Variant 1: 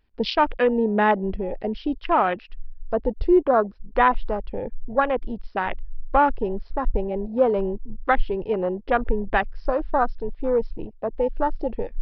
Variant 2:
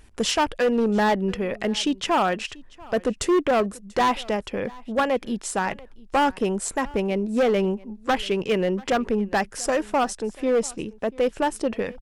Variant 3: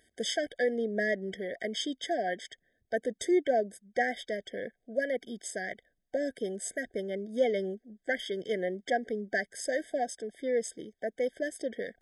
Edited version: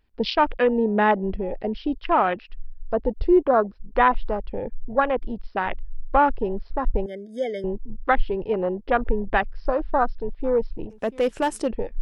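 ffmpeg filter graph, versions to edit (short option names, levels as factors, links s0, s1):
-filter_complex "[0:a]asplit=3[s0][s1][s2];[s0]atrim=end=7.062[s3];[2:a]atrim=start=7.058:end=7.642[s4];[s1]atrim=start=7.638:end=10.902[s5];[1:a]atrim=start=10.898:end=11.712[s6];[s2]atrim=start=11.708[s7];[s3][s4]acrossfade=d=0.004:c1=hsin:c2=hsin[s8];[s8][s5]acrossfade=d=0.004:c1=hsin:c2=hsin[s9];[s9][s6]acrossfade=d=0.004:c1=hsin:c2=hsin[s10];[s10][s7]acrossfade=d=0.004:c1=hsin:c2=hsin"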